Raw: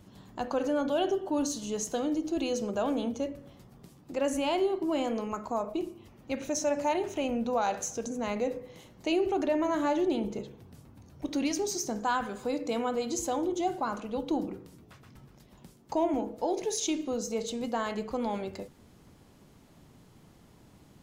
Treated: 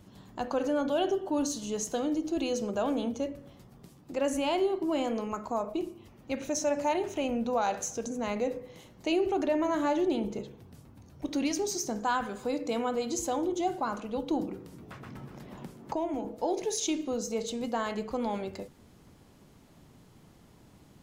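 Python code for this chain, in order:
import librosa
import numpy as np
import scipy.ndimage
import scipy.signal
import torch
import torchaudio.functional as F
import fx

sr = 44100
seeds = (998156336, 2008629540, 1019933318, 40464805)

y = fx.band_squash(x, sr, depth_pct=70, at=(14.41, 16.25))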